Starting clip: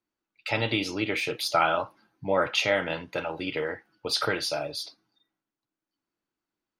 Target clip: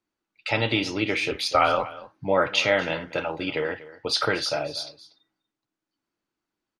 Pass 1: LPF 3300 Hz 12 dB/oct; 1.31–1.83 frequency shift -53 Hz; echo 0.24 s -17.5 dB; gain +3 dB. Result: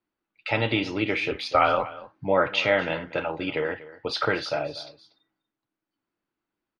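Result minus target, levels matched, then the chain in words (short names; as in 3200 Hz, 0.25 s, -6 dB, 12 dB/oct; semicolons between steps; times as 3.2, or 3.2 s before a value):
8000 Hz band -10.5 dB
LPF 7900 Hz 12 dB/oct; 1.31–1.83 frequency shift -53 Hz; echo 0.24 s -17.5 dB; gain +3 dB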